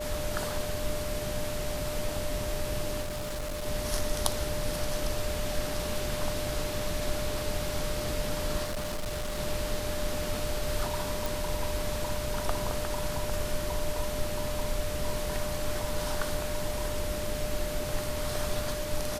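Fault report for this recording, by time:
whine 600 Hz -35 dBFS
3.01–3.67 s: clipped -31 dBFS
8.63–9.40 s: clipped -29.5 dBFS
11.26 s: pop

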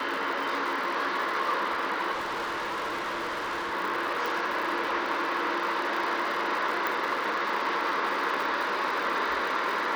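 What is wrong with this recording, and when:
crackle 160 per s -34 dBFS
2.12–3.74 s: clipped -28.5 dBFS
4.26 s: pop
6.87 s: pop -15 dBFS

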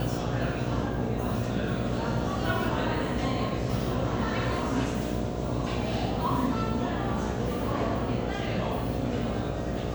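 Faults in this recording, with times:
buzz 60 Hz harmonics 12 -33 dBFS

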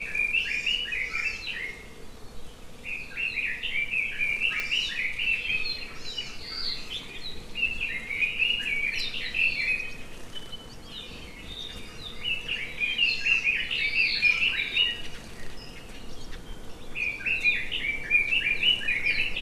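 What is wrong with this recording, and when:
4.60 s: pop -15 dBFS

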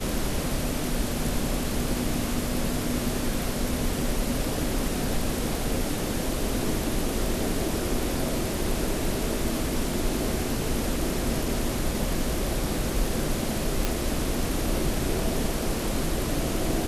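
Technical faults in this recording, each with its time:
13.85 s: pop

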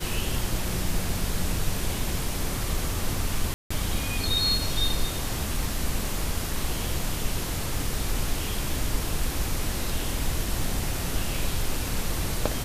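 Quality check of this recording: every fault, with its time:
3.54–3.71 s: dropout 165 ms

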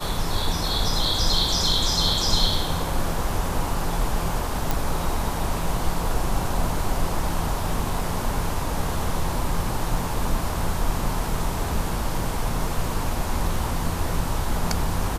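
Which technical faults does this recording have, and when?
4.71 s: pop

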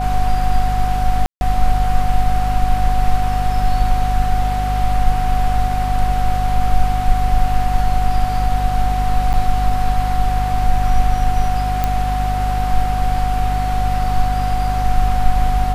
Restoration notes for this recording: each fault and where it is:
hum 50 Hz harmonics 5 -20 dBFS
whine 740 Hz -20 dBFS
1.26–1.41 s: dropout 151 ms
9.33–9.34 s: dropout 8.3 ms
11.84 s: pop -5 dBFS

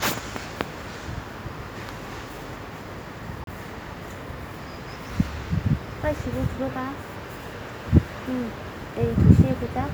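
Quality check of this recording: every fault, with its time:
3.44–3.47 s: dropout 32 ms

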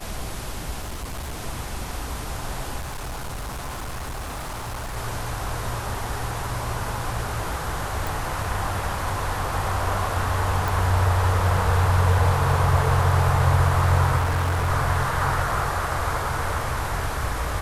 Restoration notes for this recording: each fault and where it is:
0.81–1.39 s: clipped -27.5 dBFS
2.79–4.97 s: clipped -28 dBFS
8.07 s: pop
10.68 s: pop
14.17–14.70 s: clipped -19 dBFS

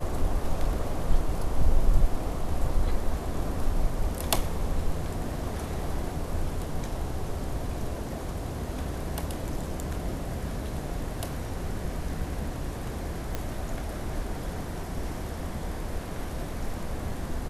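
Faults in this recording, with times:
13.35 s: pop -16 dBFS

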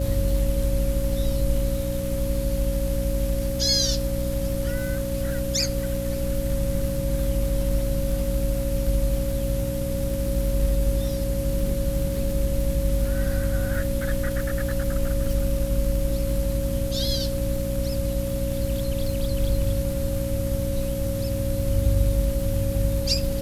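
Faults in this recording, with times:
crackle 130 per s -31 dBFS
hum 60 Hz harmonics 5 -29 dBFS
whine 550 Hz -29 dBFS

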